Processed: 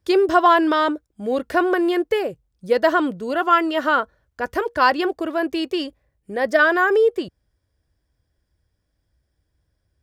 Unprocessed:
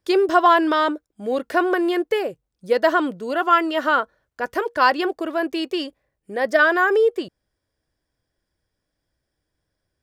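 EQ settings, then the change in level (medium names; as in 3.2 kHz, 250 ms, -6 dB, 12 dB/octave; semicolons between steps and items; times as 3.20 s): peaking EQ 65 Hz +13 dB 2 oct; 0.0 dB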